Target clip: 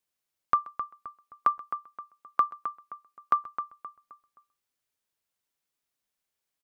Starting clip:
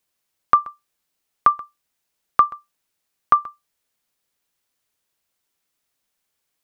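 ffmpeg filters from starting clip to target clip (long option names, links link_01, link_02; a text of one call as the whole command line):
ffmpeg -i in.wav -filter_complex "[0:a]asettb=1/sr,asplit=3[link_01][link_02][link_03];[link_01]atrim=end=0.644[link_04];[link_02]atrim=start=0.64:end=3.35,asetpts=PTS-STARTPTS,afade=type=in:duration=0.004:curve=qsin,afade=type=out:start_time=2.706:duration=0.004:curve=qsin,highpass=170[link_05];[link_03]atrim=start=3.346[link_06];[link_04][link_05]acrossfade=duration=0.004:curve1=hsin:curve2=qsin[link_07];[link_07][link_06]acrossfade=duration=0.004:curve1=qsin:curve2=hsin,asplit=2[link_08][link_09];[link_09]adelay=262,lowpass=frequency=2500:poles=1,volume=-9dB,asplit=2[link_10][link_11];[link_11]adelay=262,lowpass=frequency=2500:poles=1,volume=0.39,asplit=2[link_12][link_13];[link_13]adelay=262,lowpass=frequency=2500:poles=1,volume=0.39,asplit=2[link_14][link_15];[link_15]adelay=262,lowpass=frequency=2500:poles=1,volume=0.39[link_16];[link_08][link_10][link_12][link_14][link_16]amix=inputs=5:normalize=0,volume=-9dB" out.wav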